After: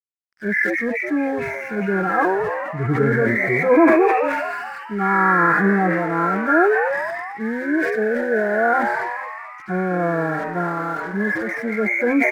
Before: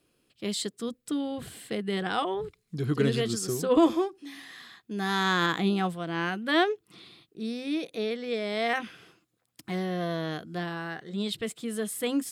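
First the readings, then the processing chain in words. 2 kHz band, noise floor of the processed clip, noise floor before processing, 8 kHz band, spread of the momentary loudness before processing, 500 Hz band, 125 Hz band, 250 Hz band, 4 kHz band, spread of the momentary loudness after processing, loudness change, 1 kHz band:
+14.0 dB, −36 dBFS, −74 dBFS, can't be measured, 13 LU, +10.5 dB, +7.5 dB, +8.5 dB, below −10 dB, 11 LU, +10.0 dB, +12.5 dB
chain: hearing-aid frequency compression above 1,300 Hz 4 to 1
harmonic and percussive parts rebalanced percussive −15 dB
low-shelf EQ 420 Hz −6 dB
in parallel at −1.5 dB: brickwall limiter −22.5 dBFS, peak gain reduction 9 dB
on the sum: dead-zone distortion −55.5 dBFS
on a send: echo with shifted repeats 216 ms, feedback 60%, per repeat +130 Hz, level −11.5 dB
on the sum: level that may fall only so fast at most 26 dB per second
level +7.5 dB

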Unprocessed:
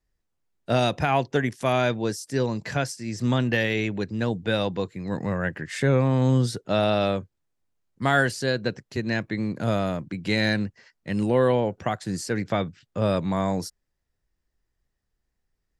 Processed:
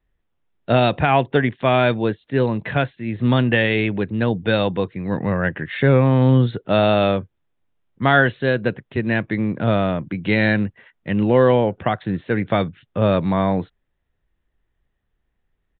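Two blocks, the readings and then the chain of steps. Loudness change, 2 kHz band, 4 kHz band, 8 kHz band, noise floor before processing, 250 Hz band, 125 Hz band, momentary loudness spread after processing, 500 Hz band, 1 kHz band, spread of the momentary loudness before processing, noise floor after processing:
+6.0 dB, +6.0 dB, +3.0 dB, below −40 dB, −78 dBFS, +6.0 dB, +6.0 dB, 9 LU, +6.0 dB, +6.0 dB, 9 LU, −73 dBFS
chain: downsampling to 8,000 Hz
level +6 dB

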